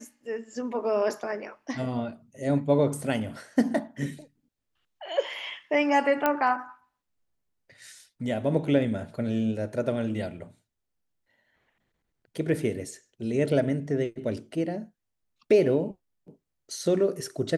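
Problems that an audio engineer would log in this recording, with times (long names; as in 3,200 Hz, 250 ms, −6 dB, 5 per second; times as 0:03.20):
0:06.26: click −10 dBFS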